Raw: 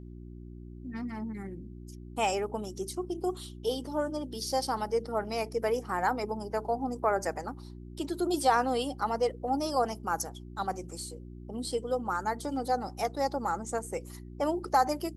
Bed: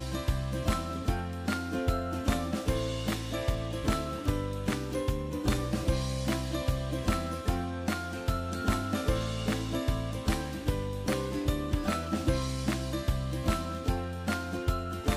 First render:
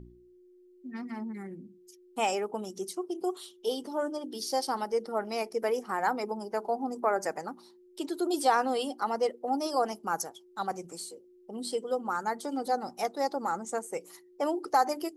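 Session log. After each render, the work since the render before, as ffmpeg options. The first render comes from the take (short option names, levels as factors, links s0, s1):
-af "bandreject=f=60:t=h:w=4,bandreject=f=120:t=h:w=4,bandreject=f=180:t=h:w=4,bandreject=f=240:t=h:w=4,bandreject=f=300:t=h:w=4"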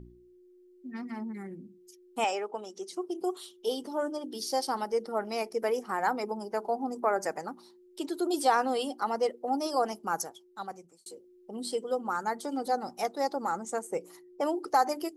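-filter_complex "[0:a]asettb=1/sr,asplit=3[s0][s1][s2];[s0]atrim=end=2.244[s3];[s1]atrim=start=2.24:end=2.93,asetpts=PTS-STARTPTS,afade=t=in:d=0.004:c=qsin,afade=t=out:st=0.686:d=0.004:c=qsin,highpass=390,lowpass=6200[s4];[s2]atrim=start=2.926[s5];[s3][s4]acrossfade=d=0.004:c1=hsin:c2=qsin[s6];[s6][s5]acrossfade=d=0.004:c1=qsin:c2=hsin,asettb=1/sr,asplit=3[s7][s8][s9];[s7]atrim=end=13.874[s10];[s8]atrim=start=13.87:end=14.41,asetpts=PTS-STARTPTS,afade=t=in:d=0.004:c=qsin,afade=t=out:st=0.536:d=0.004:c=qsin,tiltshelf=f=1100:g=4.5[s11];[s9]atrim=start=14.406[s12];[s10][s11]acrossfade=d=0.004:c1=hsin:c2=qsin[s13];[s13][s12]acrossfade=d=0.004:c1=qsin:c2=hsin,asplit=2[s14][s15];[s14]atrim=end=11.06,asetpts=PTS-STARTPTS,afade=t=out:st=10.23:d=0.83[s16];[s15]atrim=start=11.06,asetpts=PTS-STARTPTS,afade=t=in:d=0.004:c=hsin[s17];[s16][s17]concat=n=2:v=0:a=1"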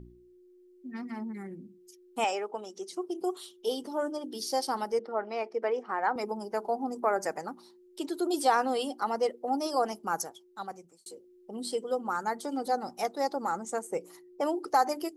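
-filter_complex "[0:a]asettb=1/sr,asplit=3[s0][s1][s2];[s0]atrim=end=4.994[s3];[s1]atrim=start=4.99:end=6.16,asetpts=PTS-STARTPTS,afade=t=in:d=0.004:c=qsin,afade=t=out:st=1.166:d=0.004:c=qsin,highpass=290,lowpass=2800[s4];[s2]atrim=start=6.156[s5];[s3][s4]acrossfade=d=0.004:c1=hsin:c2=qsin[s6];[s6][s5]acrossfade=d=0.004:c1=qsin:c2=hsin"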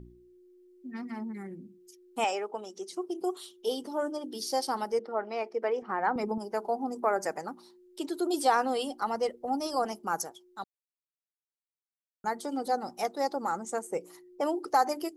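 -filter_complex "[0:a]asettb=1/sr,asplit=3[s0][s1][s2];[s0]atrim=end=5.824[s3];[s1]atrim=start=5.82:end=6.38,asetpts=PTS-STARTPTS,afade=t=in:d=0.004:c=qsin,afade=t=out:st=0.556:d=0.004:c=qsin,bass=f=250:g=11,treble=f=4000:g=-5[s4];[s2]atrim=start=6.376[s5];[s3][s4]acrossfade=d=0.004:c1=hsin:c2=qsin[s6];[s6][s5]acrossfade=d=0.004:c1=qsin:c2=hsin,asettb=1/sr,asplit=3[s7][s8][s9];[s7]atrim=end=8.604[s10];[s8]atrim=start=8.6:end=9.85,asetpts=PTS-STARTPTS,afade=t=in:d=0.004:c=qsin,afade=t=out:st=1.246:d=0.004:c=qsin,asubboost=boost=11:cutoff=160[s11];[s9]atrim=start=9.846[s12];[s10][s11]acrossfade=d=0.004:c1=hsin:c2=qsin[s13];[s13][s12]acrossfade=d=0.004:c1=qsin:c2=hsin,asplit=3[s14][s15][s16];[s14]atrim=end=10.64,asetpts=PTS-STARTPTS,afade=t=out:st=10.636:d=0.004:c=hsin[s17];[s15]atrim=start=10.64:end=12.24,asetpts=PTS-STARTPTS,volume=0[s18];[s16]atrim=start=12.24,asetpts=PTS-STARTPTS,afade=t=in:d=0.004:c=hsin[s19];[s17][s18][s19]concat=n=3:v=0:a=1"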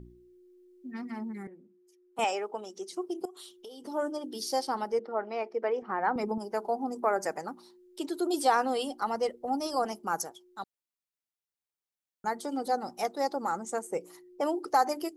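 -filter_complex "[0:a]asettb=1/sr,asplit=3[s0][s1][s2];[s0]atrim=end=1.474[s3];[s1]atrim=start=1.47:end=2.19,asetpts=PTS-STARTPTS,afade=t=in:d=0.004:c=qsin,afade=t=out:st=0.716:d=0.004:c=qsin,acrossover=split=410 2100:gain=0.158 1 0.2[s4][s5][s6];[s4][s5][s6]amix=inputs=3:normalize=0[s7];[s2]atrim=start=2.186[s8];[s3][s7]acrossfade=d=0.004:c1=hsin:c2=qsin[s9];[s9][s8]acrossfade=d=0.004:c1=qsin:c2=hsin,asettb=1/sr,asplit=3[s10][s11][s12];[s10]atrim=end=3.254[s13];[s11]atrim=start=3.25:end=3.86,asetpts=PTS-STARTPTS,afade=t=in:d=0.004:c=qsin,afade=t=out:st=0.606:d=0.004:c=qsin,acompressor=threshold=0.00794:ratio=20:attack=3.2:release=140:knee=1:detection=peak[s14];[s12]atrim=start=3.856[s15];[s13][s14]acrossfade=d=0.004:c1=hsin:c2=qsin[s16];[s16][s15]acrossfade=d=0.004:c1=qsin:c2=hsin,asettb=1/sr,asplit=3[s17][s18][s19];[s17]atrim=end=4.624[s20];[s18]atrim=start=4.62:end=6.08,asetpts=PTS-STARTPTS,afade=t=in:d=0.004:c=qsin,afade=t=out:st=1.456:d=0.004:c=qsin,highshelf=f=5700:g=-9[s21];[s19]atrim=start=6.076[s22];[s20][s21]acrossfade=d=0.004:c1=hsin:c2=qsin[s23];[s23][s22]acrossfade=d=0.004:c1=qsin:c2=hsin"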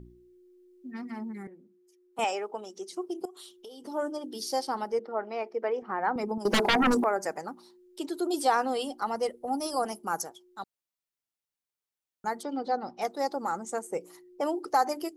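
-filter_complex "[0:a]asettb=1/sr,asplit=3[s0][s1][s2];[s0]atrim=end=6.454[s3];[s1]atrim=start=6.45:end=7.04,asetpts=PTS-STARTPTS,afade=t=in:d=0.004:c=qsin,afade=t=out:st=0.586:d=0.004:c=qsin,aeval=exprs='0.112*sin(PI/2*5.01*val(0)/0.112)':c=same[s4];[s2]atrim=start=7.036[s5];[s3][s4]acrossfade=d=0.004:c1=hsin:c2=qsin[s6];[s6][s5]acrossfade=d=0.004:c1=qsin:c2=hsin,asettb=1/sr,asplit=3[s7][s8][s9];[s7]atrim=end=9.164[s10];[s8]atrim=start=9.16:end=10.18,asetpts=PTS-STARTPTS,afade=t=in:d=0.004:c=qsin,afade=t=out:st=1.016:d=0.004:c=qsin,equalizer=f=10000:t=o:w=0.4:g=11[s11];[s9]atrim=start=10.176[s12];[s10][s11]acrossfade=d=0.004:c1=hsin:c2=qsin[s13];[s13][s12]acrossfade=d=0.004:c1=qsin:c2=hsin,asettb=1/sr,asplit=3[s14][s15][s16];[s14]atrim=end=12.434[s17];[s15]atrim=start=12.43:end=13.02,asetpts=PTS-STARTPTS,afade=t=in:d=0.004:c=qsin,afade=t=out:st=0.586:d=0.004:c=qsin,lowpass=f=4600:w=0.5412,lowpass=f=4600:w=1.3066[s18];[s16]atrim=start=13.016[s19];[s17][s18]acrossfade=d=0.004:c1=hsin:c2=qsin[s20];[s20][s19]acrossfade=d=0.004:c1=qsin:c2=hsin"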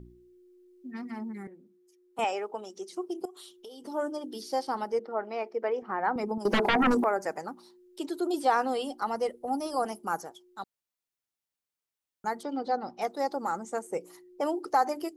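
-filter_complex "[0:a]acrossover=split=3200[s0][s1];[s1]acompressor=threshold=0.00631:ratio=4:attack=1:release=60[s2];[s0][s2]amix=inputs=2:normalize=0"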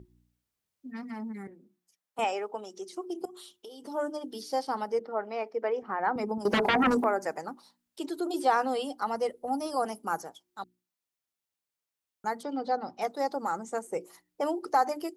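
-af "highpass=40,bandreject=f=60:t=h:w=6,bandreject=f=120:t=h:w=6,bandreject=f=180:t=h:w=6,bandreject=f=240:t=h:w=6,bandreject=f=300:t=h:w=6,bandreject=f=360:t=h:w=6"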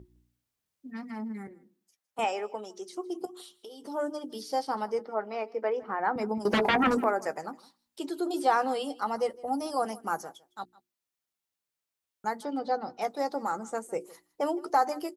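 -filter_complex "[0:a]asplit=2[s0][s1];[s1]adelay=14,volume=0.224[s2];[s0][s2]amix=inputs=2:normalize=0,aecho=1:1:159:0.0794"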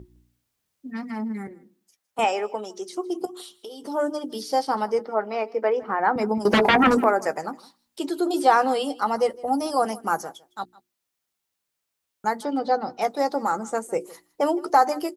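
-af "volume=2.24"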